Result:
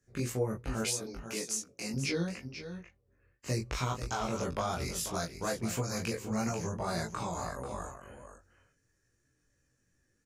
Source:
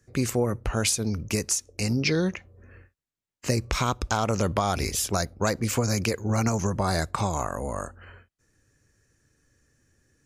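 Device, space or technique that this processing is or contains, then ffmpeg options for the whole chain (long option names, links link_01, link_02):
double-tracked vocal: -filter_complex "[0:a]asettb=1/sr,asplit=3[link_01][link_02][link_03];[link_01]atrim=end=0.824[link_04];[link_02]atrim=start=0.82:end=1.94,asetpts=PTS-STARTPTS,afade=type=in:duration=0.004:curve=qsin,afade=type=out:start_time=1.116:duration=0.004:curve=qsin,highpass=260[link_05];[link_03]atrim=start=1.936[link_06];[link_04][link_05]acrossfade=duration=0.004:curve1=hsin:curve2=qsin[link_07];[link_07][link_06]acrossfade=duration=0.004:curve1=qsin:curve2=hsin,asplit=2[link_08][link_09];[link_09]adelay=23,volume=-2.5dB[link_10];[link_08][link_10]amix=inputs=2:normalize=0,aecho=1:1:489:0.316,flanger=delay=15.5:depth=2.7:speed=2.9,volume=-7.5dB"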